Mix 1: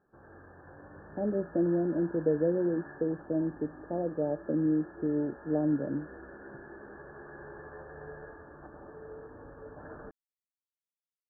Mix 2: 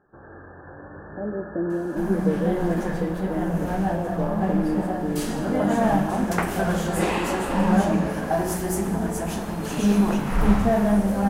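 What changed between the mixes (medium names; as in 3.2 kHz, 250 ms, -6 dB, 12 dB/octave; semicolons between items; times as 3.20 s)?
speech: send on; first sound +9.5 dB; second sound: unmuted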